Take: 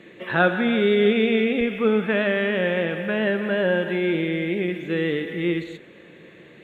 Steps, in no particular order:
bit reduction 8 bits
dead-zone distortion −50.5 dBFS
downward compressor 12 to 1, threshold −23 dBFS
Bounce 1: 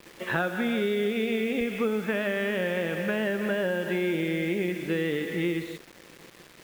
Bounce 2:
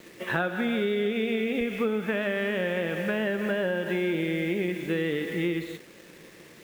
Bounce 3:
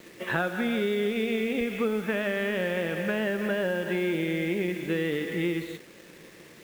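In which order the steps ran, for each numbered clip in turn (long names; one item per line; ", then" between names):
dead-zone distortion, then downward compressor, then bit reduction
bit reduction, then dead-zone distortion, then downward compressor
downward compressor, then bit reduction, then dead-zone distortion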